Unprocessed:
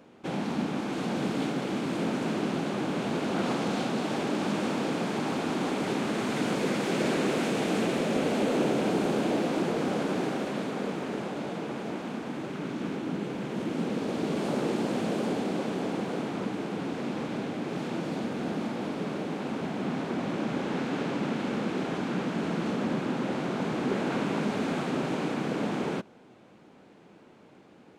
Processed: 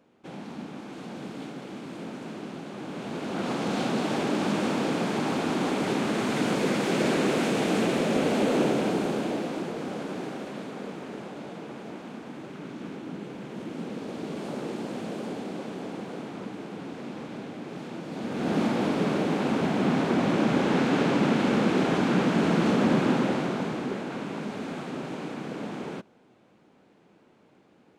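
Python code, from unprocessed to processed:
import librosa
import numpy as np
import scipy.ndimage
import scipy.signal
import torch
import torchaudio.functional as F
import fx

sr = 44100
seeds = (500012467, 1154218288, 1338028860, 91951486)

y = fx.gain(x, sr, db=fx.line((2.68, -8.5), (3.88, 2.5), (8.61, 2.5), (9.72, -5.0), (18.07, -5.0), (18.58, 7.0), (23.11, 7.0), (24.07, -5.0)))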